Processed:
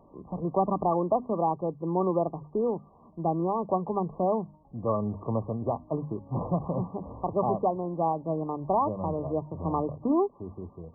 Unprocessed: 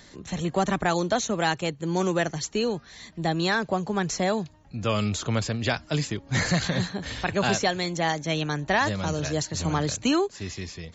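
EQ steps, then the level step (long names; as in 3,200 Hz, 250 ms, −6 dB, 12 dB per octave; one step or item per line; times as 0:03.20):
linear-phase brick-wall low-pass 1,200 Hz
low-shelf EQ 220 Hz −7 dB
mains-hum notches 50/100/150/200/250 Hz
+1.0 dB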